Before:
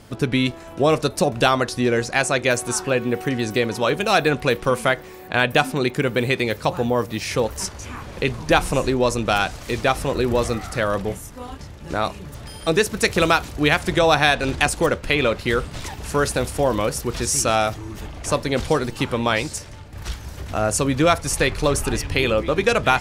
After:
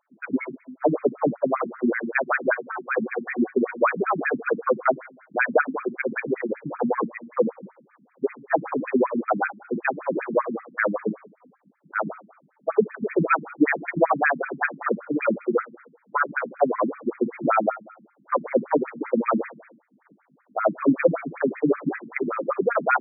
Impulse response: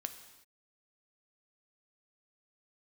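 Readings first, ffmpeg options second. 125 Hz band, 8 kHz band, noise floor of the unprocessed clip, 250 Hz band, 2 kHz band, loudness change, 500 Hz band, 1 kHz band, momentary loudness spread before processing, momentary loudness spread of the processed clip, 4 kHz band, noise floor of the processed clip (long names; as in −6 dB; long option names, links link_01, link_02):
−13.5 dB, below −40 dB, −39 dBFS, −2.0 dB, −4.5 dB, −4.0 dB, −3.5 dB, −3.5 dB, 11 LU, 8 LU, below −40 dB, −64 dBFS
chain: -filter_complex "[0:a]agate=range=-22dB:threshold=-24dB:ratio=16:detection=peak,highpass=frequency=47:poles=1,highshelf=frequency=4000:gain=-3.5,bandreject=frequency=116.6:width_type=h:width=4,bandreject=frequency=233.2:width_type=h:width=4,bandreject=frequency=349.8:width_type=h:width=4,bandreject=frequency=466.4:width_type=h:width=4,bandreject=frequency=583:width_type=h:width=4,bandreject=frequency=699.6:width_type=h:width=4,bandreject=frequency=816.2:width_type=h:width=4,bandreject=frequency=932.8:width_type=h:width=4,bandreject=frequency=1049.4:width_type=h:width=4,bandreject=frequency=1166:width_type=h:width=4,bandreject=frequency=1282.6:width_type=h:width=4,bandreject=frequency=1399.2:width_type=h:width=4,bandreject=frequency=1515.8:width_type=h:width=4,bandreject=frequency=1632.4:width_type=h:width=4,bandreject=frequency=1749:width_type=h:width=4,bandreject=frequency=1865.6:width_type=h:width=4,bandreject=frequency=1982.2:width_type=h:width=4,bandreject=frequency=2098.8:width_type=h:width=4,bandreject=frequency=2215.4:width_type=h:width=4,bandreject=frequency=2332:width_type=h:width=4,bandreject=frequency=2448.6:width_type=h:width=4,bandreject=frequency=2565.2:width_type=h:width=4,bandreject=frequency=2681.8:width_type=h:width=4,bandreject=frequency=2798.4:width_type=h:width=4,bandreject=frequency=2915:width_type=h:width=4,dynaudnorm=framelen=140:gausssize=17:maxgain=4dB,acrossover=split=1700[link_01][link_02];[link_01]aeval=exprs='val(0)*(1-0.5/2+0.5/2*cos(2*PI*4.7*n/s))':channel_layout=same[link_03];[link_02]aeval=exprs='val(0)*(1-0.5/2-0.5/2*cos(2*PI*4.7*n/s))':channel_layout=same[link_04];[link_03][link_04]amix=inputs=2:normalize=0,asoftclip=type=tanh:threshold=-10.5dB,aeval=exprs='val(0)+0.00224*(sin(2*PI*50*n/s)+sin(2*PI*2*50*n/s)/2+sin(2*PI*3*50*n/s)/3+sin(2*PI*4*50*n/s)/4+sin(2*PI*5*50*n/s)/5)':channel_layout=same,asplit=2[link_05][link_06];[1:a]atrim=start_sample=2205,lowshelf=frequency=230:gain=9[link_07];[link_06][link_07]afir=irnorm=-1:irlink=0,volume=-5.5dB[link_08];[link_05][link_08]amix=inputs=2:normalize=0,afftfilt=real='re*between(b*sr/1024,210*pow(1800/210,0.5+0.5*sin(2*PI*5.2*pts/sr))/1.41,210*pow(1800/210,0.5+0.5*sin(2*PI*5.2*pts/sr))*1.41)':imag='im*between(b*sr/1024,210*pow(1800/210,0.5+0.5*sin(2*PI*5.2*pts/sr))/1.41,210*pow(1800/210,0.5+0.5*sin(2*PI*5.2*pts/sr))*1.41)':win_size=1024:overlap=0.75,volume=3dB"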